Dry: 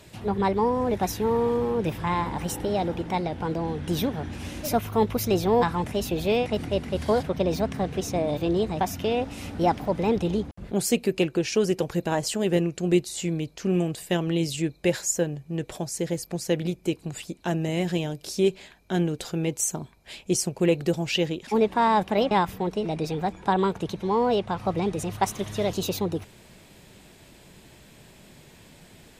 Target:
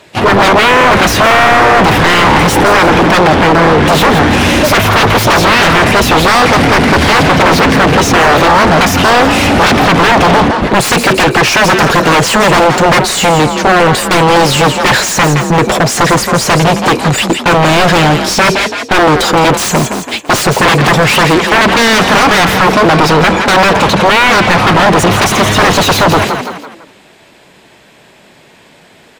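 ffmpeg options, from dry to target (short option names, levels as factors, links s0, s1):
-filter_complex "[0:a]agate=range=0.0398:threshold=0.0126:ratio=16:detection=peak,aeval=exprs='0.355*sin(PI/2*8.91*val(0)/0.355)':c=same,asplit=5[s0][s1][s2][s3][s4];[s1]adelay=167,afreqshift=42,volume=0.2[s5];[s2]adelay=334,afreqshift=84,volume=0.0741[s6];[s3]adelay=501,afreqshift=126,volume=0.0272[s7];[s4]adelay=668,afreqshift=168,volume=0.0101[s8];[s0][s5][s6][s7][s8]amix=inputs=5:normalize=0,asplit=2[s9][s10];[s10]highpass=f=720:p=1,volume=14.1,asoftclip=type=tanh:threshold=0.596[s11];[s9][s11]amix=inputs=2:normalize=0,lowpass=f=2100:p=1,volume=0.501,volume=1.58"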